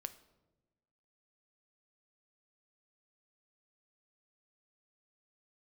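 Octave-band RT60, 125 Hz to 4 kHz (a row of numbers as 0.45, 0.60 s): 1.5, 1.5, 1.3, 0.95, 0.70, 0.65 s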